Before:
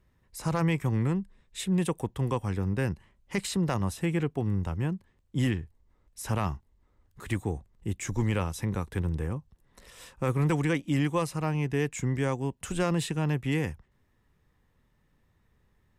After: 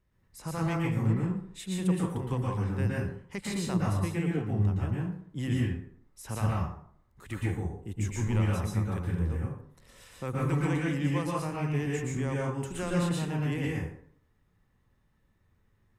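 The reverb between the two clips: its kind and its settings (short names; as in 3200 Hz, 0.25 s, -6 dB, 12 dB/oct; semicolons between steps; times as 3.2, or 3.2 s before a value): plate-style reverb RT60 0.6 s, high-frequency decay 0.6×, pre-delay 0.105 s, DRR -4 dB; gain -7.5 dB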